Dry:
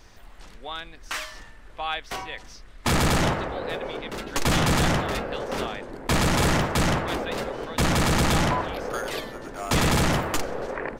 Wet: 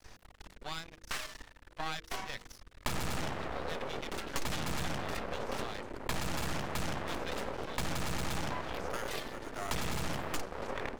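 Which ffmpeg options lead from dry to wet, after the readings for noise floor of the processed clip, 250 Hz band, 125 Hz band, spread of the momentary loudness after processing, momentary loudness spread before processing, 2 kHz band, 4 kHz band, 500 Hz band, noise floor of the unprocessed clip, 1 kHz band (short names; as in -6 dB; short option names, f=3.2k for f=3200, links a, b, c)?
-60 dBFS, -14.5 dB, -15.0 dB, 7 LU, 14 LU, -11.5 dB, -11.5 dB, -12.0 dB, -46 dBFS, -12.0 dB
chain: -af "aeval=exprs='max(val(0),0)':c=same,bandreject=f=46.86:t=h:w=4,bandreject=f=93.72:t=h:w=4,bandreject=f=140.58:t=h:w=4,bandreject=f=187.44:t=h:w=4,bandreject=f=234.3:t=h:w=4,bandreject=f=281.16:t=h:w=4,bandreject=f=328.02:t=h:w=4,bandreject=f=374.88:t=h:w=4,bandreject=f=421.74:t=h:w=4,bandreject=f=468.6:t=h:w=4,bandreject=f=515.46:t=h:w=4,acompressor=threshold=-31dB:ratio=6"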